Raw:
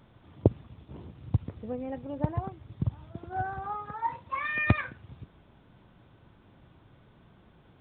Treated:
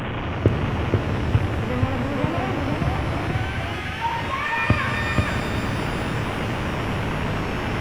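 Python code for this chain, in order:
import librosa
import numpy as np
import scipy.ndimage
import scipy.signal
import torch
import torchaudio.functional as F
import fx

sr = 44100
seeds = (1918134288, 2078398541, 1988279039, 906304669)

p1 = fx.delta_mod(x, sr, bps=16000, step_db=-26.0)
p2 = fx.spec_box(p1, sr, start_s=3.31, length_s=0.7, low_hz=280.0, high_hz=1500.0, gain_db=-12)
p3 = p2 + fx.echo_single(p2, sr, ms=481, db=-3.5, dry=0)
p4 = fx.rev_shimmer(p3, sr, seeds[0], rt60_s=3.5, semitones=12, shimmer_db=-8, drr_db=5.5)
y = F.gain(torch.from_numpy(p4), 4.5).numpy()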